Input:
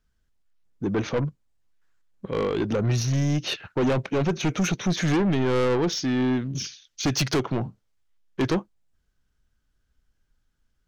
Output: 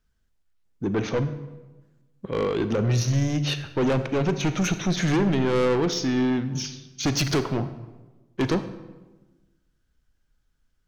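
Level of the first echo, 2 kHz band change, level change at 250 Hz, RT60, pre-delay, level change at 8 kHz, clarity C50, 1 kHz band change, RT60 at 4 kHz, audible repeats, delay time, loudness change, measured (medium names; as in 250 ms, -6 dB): no echo, +0.5 dB, +0.5 dB, 1.2 s, 33 ms, +0.5 dB, 12.0 dB, +0.5 dB, 0.80 s, no echo, no echo, +0.5 dB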